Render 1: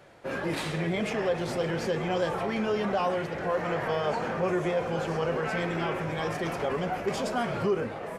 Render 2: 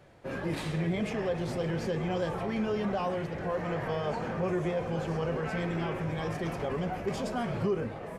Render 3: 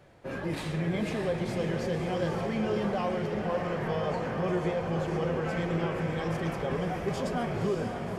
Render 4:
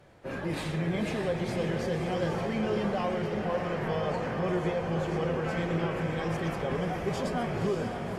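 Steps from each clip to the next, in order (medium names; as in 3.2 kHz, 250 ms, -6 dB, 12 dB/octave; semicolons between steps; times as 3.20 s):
bass shelf 210 Hz +10.5 dB; band-stop 1.4 kHz, Q 27; trim -5.5 dB
echo that smears into a reverb 541 ms, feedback 48%, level -5 dB
AAC 48 kbps 44.1 kHz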